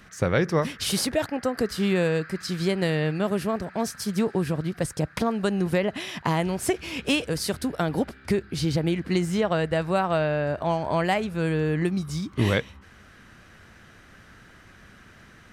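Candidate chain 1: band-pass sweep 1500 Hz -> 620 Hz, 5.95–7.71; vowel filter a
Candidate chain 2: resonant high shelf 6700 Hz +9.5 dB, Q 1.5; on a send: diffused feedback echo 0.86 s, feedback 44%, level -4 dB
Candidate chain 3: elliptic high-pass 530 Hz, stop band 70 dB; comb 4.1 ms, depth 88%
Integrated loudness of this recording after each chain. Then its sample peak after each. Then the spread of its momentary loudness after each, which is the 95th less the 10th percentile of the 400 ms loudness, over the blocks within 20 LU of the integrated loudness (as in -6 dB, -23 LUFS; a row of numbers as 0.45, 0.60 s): -40.5, -24.0, -28.0 LUFS; -22.0, -7.5, -8.5 dBFS; 21, 13, 9 LU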